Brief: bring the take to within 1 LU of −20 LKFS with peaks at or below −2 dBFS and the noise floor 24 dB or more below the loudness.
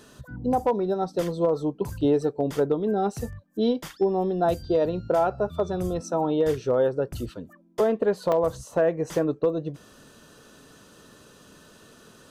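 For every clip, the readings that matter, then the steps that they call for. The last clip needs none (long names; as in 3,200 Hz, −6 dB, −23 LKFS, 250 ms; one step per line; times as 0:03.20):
number of dropouts 1; longest dropout 2.2 ms; integrated loudness −25.5 LKFS; sample peak −13.5 dBFS; target loudness −20.0 LKFS
→ repair the gap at 0:08.32, 2.2 ms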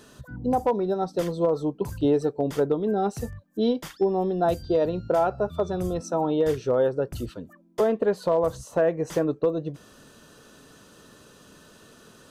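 number of dropouts 0; integrated loudness −25.5 LKFS; sample peak −13.5 dBFS; target loudness −20.0 LKFS
→ level +5.5 dB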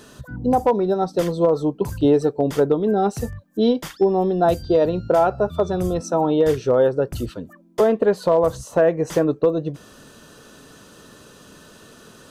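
integrated loudness −20.0 LKFS; sample peak −8.0 dBFS; background noise floor −48 dBFS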